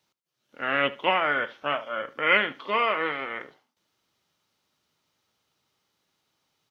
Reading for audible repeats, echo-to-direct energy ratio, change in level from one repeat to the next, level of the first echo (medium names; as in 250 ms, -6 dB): 2, -20.0 dB, -13.0 dB, -20.0 dB